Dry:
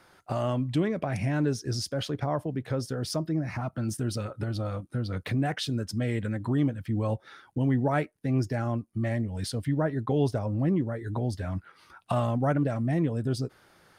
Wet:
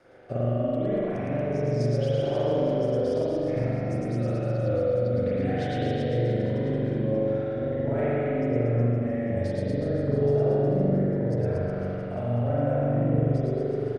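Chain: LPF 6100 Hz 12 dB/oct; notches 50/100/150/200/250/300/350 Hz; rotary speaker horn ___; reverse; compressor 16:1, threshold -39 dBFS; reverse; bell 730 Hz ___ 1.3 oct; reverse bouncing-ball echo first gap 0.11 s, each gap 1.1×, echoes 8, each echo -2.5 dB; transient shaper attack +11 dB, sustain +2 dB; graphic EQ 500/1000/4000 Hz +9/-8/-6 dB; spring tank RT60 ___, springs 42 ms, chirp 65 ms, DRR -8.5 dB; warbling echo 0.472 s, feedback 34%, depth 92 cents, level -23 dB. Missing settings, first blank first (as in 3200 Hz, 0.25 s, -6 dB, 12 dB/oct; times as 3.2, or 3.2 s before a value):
0.85 Hz, +2.5 dB, 2.4 s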